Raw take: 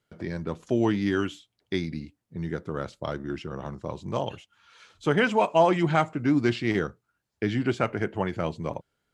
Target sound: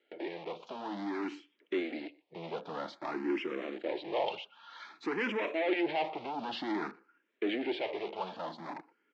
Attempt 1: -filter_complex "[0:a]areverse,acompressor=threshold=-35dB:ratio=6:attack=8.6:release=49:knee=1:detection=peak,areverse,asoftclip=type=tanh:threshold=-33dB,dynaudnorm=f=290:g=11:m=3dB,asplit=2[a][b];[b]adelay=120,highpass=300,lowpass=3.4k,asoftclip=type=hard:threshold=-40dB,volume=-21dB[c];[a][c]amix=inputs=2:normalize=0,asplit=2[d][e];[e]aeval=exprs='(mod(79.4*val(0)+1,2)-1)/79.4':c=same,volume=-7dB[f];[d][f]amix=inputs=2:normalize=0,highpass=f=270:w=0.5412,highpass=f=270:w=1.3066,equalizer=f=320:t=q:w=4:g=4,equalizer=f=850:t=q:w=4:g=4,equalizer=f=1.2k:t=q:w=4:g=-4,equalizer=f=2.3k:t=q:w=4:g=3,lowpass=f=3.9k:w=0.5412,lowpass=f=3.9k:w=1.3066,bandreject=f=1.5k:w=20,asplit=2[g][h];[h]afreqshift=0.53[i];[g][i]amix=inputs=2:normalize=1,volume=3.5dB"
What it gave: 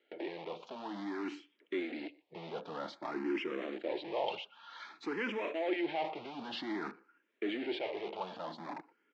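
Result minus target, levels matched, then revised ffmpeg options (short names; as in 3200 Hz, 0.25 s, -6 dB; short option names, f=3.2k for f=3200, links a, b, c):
compressor: peak gain reduction +8.5 dB
-filter_complex "[0:a]areverse,acompressor=threshold=-25dB:ratio=6:attack=8.6:release=49:knee=1:detection=peak,areverse,asoftclip=type=tanh:threshold=-33dB,dynaudnorm=f=290:g=11:m=3dB,asplit=2[a][b];[b]adelay=120,highpass=300,lowpass=3.4k,asoftclip=type=hard:threshold=-40dB,volume=-21dB[c];[a][c]amix=inputs=2:normalize=0,asplit=2[d][e];[e]aeval=exprs='(mod(79.4*val(0)+1,2)-1)/79.4':c=same,volume=-7dB[f];[d][f]amix=inputs=2:normalize=0,highpass=f=270:w=0.5412,highpass=f=270:w=1.3066,equalizer=f=320:t=q:w=4:g=4,equalizer=f=850:t=q:w=4:g=4,equalizer=f=1.2k:t=q:w=4:g=-4,equalizer=f=2.3k:t=q:w=4:g=3,lowpass=f=3.9k:w=0.5412,lowpass=f=3.9k:w=1.3066,bandreject=f=1.5k:w=20,asplit=2[g][h];[h]afreqshift=0.53[i];[g][i]amix=inputs=2:normalize=1,volume=3.5dB"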